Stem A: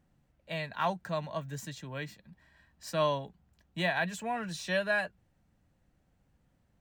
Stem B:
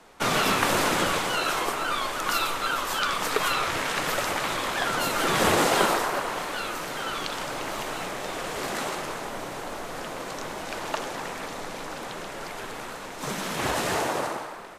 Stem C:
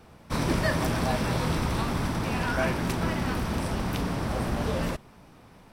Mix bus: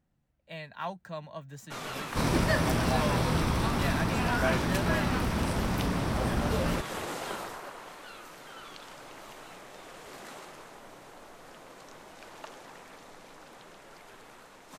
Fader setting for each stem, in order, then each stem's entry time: -5.5 dB, -15.0 dB, -0.5 dB; 0.00 s, 1.50 s, 1.85 s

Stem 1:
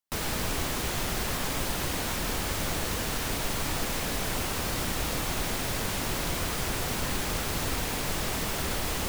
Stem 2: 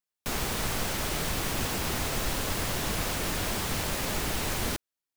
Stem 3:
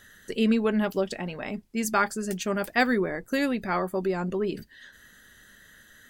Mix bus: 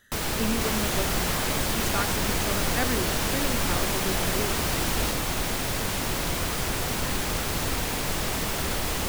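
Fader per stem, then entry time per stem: +2.5 dB, -0.5 dB, -7.0 dB; 0.00 s, 0.35 s, 0.00 s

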